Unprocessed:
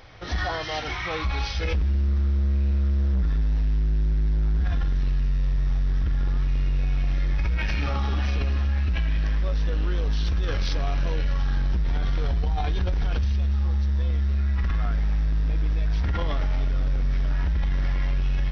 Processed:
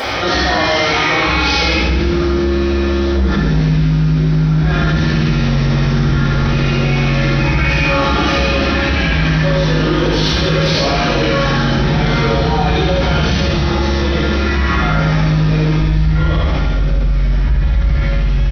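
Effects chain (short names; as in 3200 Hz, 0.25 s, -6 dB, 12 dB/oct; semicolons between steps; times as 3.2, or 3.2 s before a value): HPF 180 Hz 12 dB/oct, from 15.8 s 42 Hz; vocal rider; limiter -26 dBFS, peak gain reduction 8.5 dB; early reflections 65 ms -8.5 dB, 78 ms -4.5 dB; reverb RT60 1.1 s, pre-delay 4 ms, DRR -10 dB; fast leveller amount 70%; gain -1 dB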